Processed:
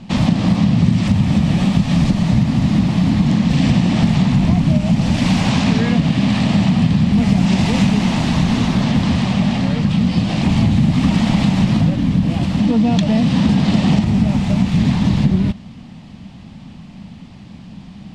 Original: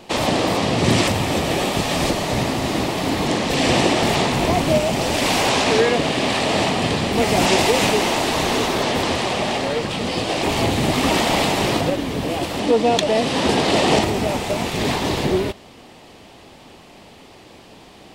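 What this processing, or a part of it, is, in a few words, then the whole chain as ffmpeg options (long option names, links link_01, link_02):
jukebox: -af "lowpass=6600,lowshelf=frequency=280:width_type=q:width=3:gain=12.5,acompressor=threshold=-8dB:ratio=6,volume=-2dB"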